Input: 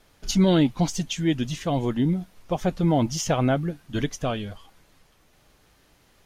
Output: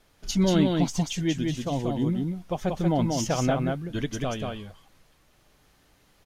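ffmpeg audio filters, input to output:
-filter_complex "[0:a]asettb=1/sr,asplit=3[s0][s1][s2];[s0]atrim=end=1.344[s3];[s1]atrim=start=1.34:end=2.09,asetpts=PTS-STARTPTS,afade=t=in:d=0.004:c=qsin,afade=t=out:st=0.746:d=0.004:c=qsin,equalizer=f=1800:w=1.2:g=-6[s4];[s2]atrim=start=2.086[s5];[s3][s4]acrossfade=d=0.004:c1=hsin:c2=qsin[s6];[s6][s5]acrossfade=d=0.004:c1=qsin:c2=hsin,aecho=1:1:185:0.668,volume=0.668"

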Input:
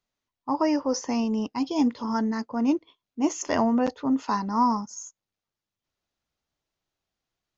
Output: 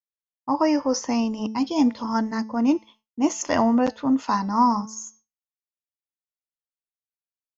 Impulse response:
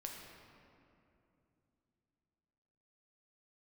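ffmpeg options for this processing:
-af "equalizer=f=400:t=o:w=0.22:g=-8,bandreject=f=219:t=h:w=4,bandreject=f=438:t=h:w=4,bandreject=f=657:t=h:w=4,bandreject=f=876:t=h:w=4,bandreject=f=1095:t=h:w=4,bandreject=f=1314:t=h:w=4,bandreject=f=1533:t=h:w=4,bandreject=f=1752:t=h:w=4,bandreject=f=1971:t=h:w=4,bandreject=f=2190:t=h:w=4,bandreject=f=2409:t=h:w=4,bandreject=f=2628:t=h:w=4,bandreject=f=2847:t=h:w=4,bandreject=f=3066:t=h:w=4,bandreject=f=3285:t=h:w=4,bandreject=f=3504:t=h:w=4,bandreject=f=3723:t=h:w=4,bandreject=f=3942:t=h:w=4,bandreject=f=4161:t=h:w=4,bandreject=f=4380:t=h:w=4,bandreject=f=4599:t=h:w=4,bandreject=f=4818:t=h:w=4,bandreject=f=5037:t=h:w=4,bandreject=f=5256:t=h:w=4,bandreject=f=5475:t=h:w=4,bandreject=f=5694:t=h:w=4,bandreject=f=5913:t=h:w=4,bandreject=f=6132:t=h:w=4,bandreject=f=6351:t=h:w=4,bandreject=f=6570:t=h:w=4,agate=range=0.0224:threshold=0.00316:ratio=3:detection=peak,volume=1.5"

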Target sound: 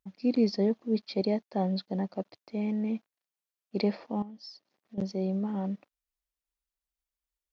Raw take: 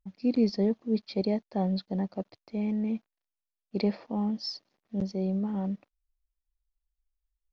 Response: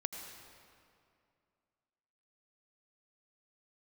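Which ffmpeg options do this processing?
-filter_complex "[0:a]highpass=f=190:p=1,asettb=1/sr,asplit=3[s0][s1][s2];[s0]atrim=end=4.224[s3];[s1]atrim=start=4.22:end=4.98,asetpts=PTS-STARTPTS,afade=t=in:d=0.004:c=qsin,afade=t=out:st=0.756:d=0.004:c=qsin,acompressor=threshold=0.00316:ratio=3[s4];[s2]atrim=start=4.976[s5];[s3][s4]acrossfade=d=0.004:c1=hsin:c2=qsin[s6];[s6][s5]acrossfade=d=0.004:c1=qsin:c2=hsin,volume=1.19"

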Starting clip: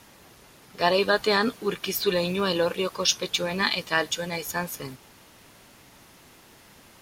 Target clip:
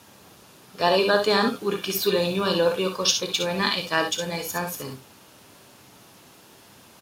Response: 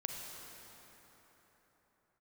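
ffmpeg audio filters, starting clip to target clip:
-filter_complex "[0:a]highpass=82,equalizer=f=2000:t=o:w=0.35:g=-6,asplit=2[s0][s1];[s1]adelay=31,volume=0.2[s2];[s0][s2]amix=inputs=2:normalize=0,aecho=1:1:59|69:0.398|0.335,volume=1.12"

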